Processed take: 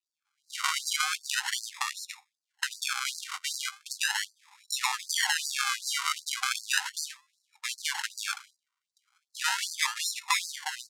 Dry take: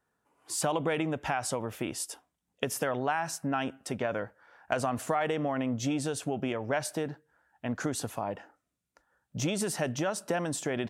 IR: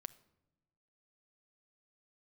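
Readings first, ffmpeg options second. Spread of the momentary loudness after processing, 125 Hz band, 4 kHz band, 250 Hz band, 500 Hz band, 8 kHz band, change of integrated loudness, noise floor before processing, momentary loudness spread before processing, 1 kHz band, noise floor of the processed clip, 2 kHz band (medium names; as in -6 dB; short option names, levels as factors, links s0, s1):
10 LU, under -40 dB, +11.5 dB, under -40 dB, under -40 dB, +5.5 dB, +2.0 dB, -83 dBFS, 8 LU, -1.5 dB, under -85 dBFS, +6.5 dB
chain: -af "dynaudnorm=f=140:g=7:m=3.55,acrusher=samples=40:mix=1:aa=0.000001:lfo=1:lforange=24:lforate=0.37,lowpass=9800,equalizer=f=7100:t=o:w=0.88:g=2.5,afftfilt=real='re*gte(b*sr/1024,740*pow(4100/740,0.5+0.5*sin(2*PI*2.6*pts/sr)))':imag='im*gte(b*sr/1024,740*pow(4100/740,0.5+0.5*sin(2*PI*2.6*pts/sr)))':win_size=1024:overlap=0.75"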